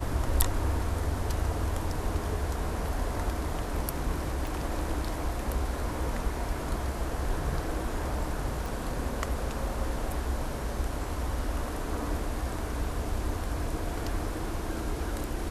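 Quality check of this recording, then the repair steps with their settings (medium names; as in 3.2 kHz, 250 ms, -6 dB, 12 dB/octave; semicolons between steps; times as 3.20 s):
4.47 s: pop
8.66 s: pop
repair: de-click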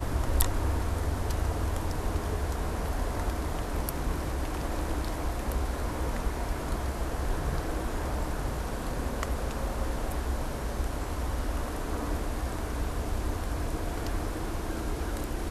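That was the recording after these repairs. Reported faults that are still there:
nothing left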